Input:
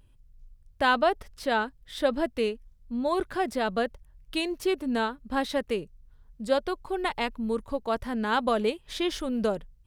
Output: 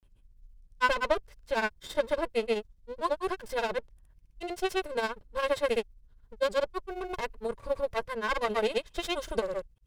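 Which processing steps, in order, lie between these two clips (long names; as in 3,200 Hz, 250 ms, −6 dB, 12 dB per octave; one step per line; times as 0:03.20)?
lower of the sound and its delayed copy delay 1.9 ms
granular cloud 100 ms, grains 15 per second, pitch spread up and down by 0 semitones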